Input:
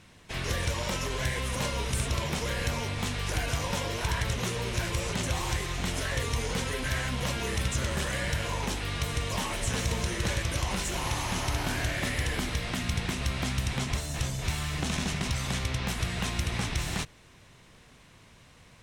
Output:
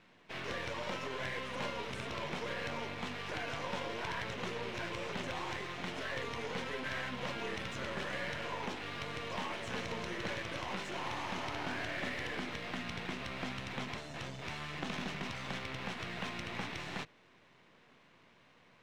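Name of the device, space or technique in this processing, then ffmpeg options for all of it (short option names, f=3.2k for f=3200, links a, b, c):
crystal radio: -af "highpass=210,lowpass=3.1k,aeval=exprs='if(lt(val(0),0),0.447*val(0),val(0))':c=same,volume=-2.5dB"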